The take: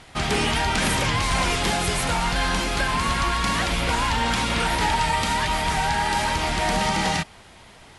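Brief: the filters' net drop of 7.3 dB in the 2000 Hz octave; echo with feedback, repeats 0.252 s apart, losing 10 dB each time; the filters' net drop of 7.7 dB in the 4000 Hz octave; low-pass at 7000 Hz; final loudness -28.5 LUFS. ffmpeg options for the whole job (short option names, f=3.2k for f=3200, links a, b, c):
-af "lowpass=7k,equalizer=f=2k:t=o:g=-7.5,equalizer=f=4k:t=o:g=-7,aecho=1:1:252|504|756|1008:0.316|0.101|0.0324|0.0104,volume=-3.5dB"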